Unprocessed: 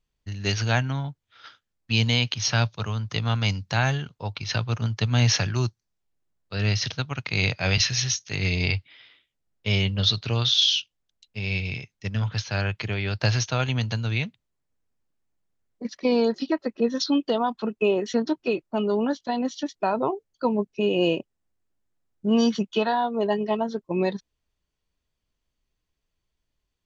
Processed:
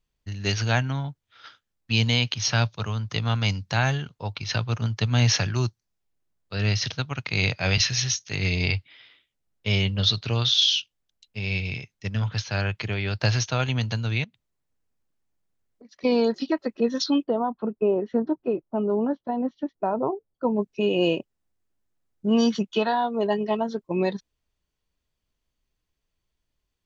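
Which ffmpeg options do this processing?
-filter_complex "[0:a]asettb=1/sr,asplit=3[s0][s1][s2];[s0]atrim=end=14.244[s3];[s1]atrim=start=14.24:end=16.04,asetpts=PTS-STARTPTS,afade=t=in:d=0.004:c=qsin,afade=t=out:st=1.796:d=0.004:c=qsin,acompressor=threshold=0.00447:ratio=8:attack=3.2:release=140:knee=1:detection=peak[s4];[s2]atrim=start=16.036[s5];[s3][s4]acrossfade=d=0.004:c1=hsin:c2=qsin[s6];[s6][s5]acrossfade=d=0.004:c1=qsin:c2=hsin,asplit=3[s7][s8][s9];[s7]afade=t=out:st=17.23:d=0.02[s10];[s8]lowpass=1000,afade=t=in:st=17.23:d=0.02,afade=t=out:st=20.55:d=0.02[s11];[s9]afade=t=in:st=20.55:d=0.02[s12];[s10][s11][s12]amix=inputs=3:normalize=0"

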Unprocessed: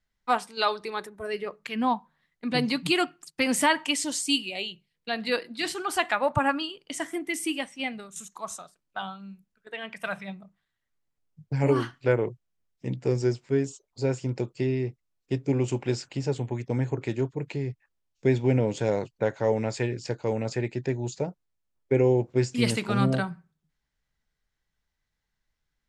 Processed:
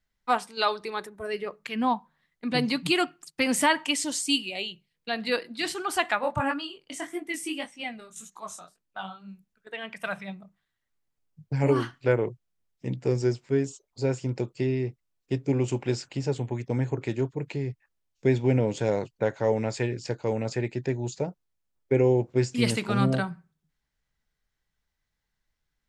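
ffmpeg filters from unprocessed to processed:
-filter_complex "[0:a]asplit=3[s0][s1][s2];[s0]afade=t=out:st=6.19:d=0.02[s3];[s1]flanger=delay=16.5:depth=6.6:speed=1.8,afade=t=in:st=6.19:d=0.02,afade=t=out:st=9.27:d=0.02[s4];[s2]afade=t=in:st=9.27:d=0.02[s5];[s3][s4][s5]amix=inputs=3:normalize=0"

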